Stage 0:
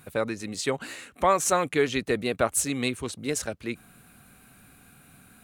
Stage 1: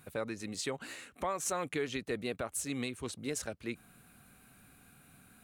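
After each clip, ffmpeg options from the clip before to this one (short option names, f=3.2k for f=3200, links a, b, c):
-af "alimiter=limit=-17.5dB:level=0:latency=1:release=221,volume=-6dB"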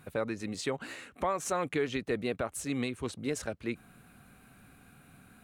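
-af "highshelf=f=3.9k:g=-8.5,volume=4.5dB"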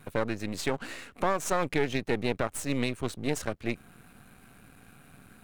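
-af "aeval=exprs='if(lt(val(0),0),0.251*val(0),val(0))':c=same,volume=6dB"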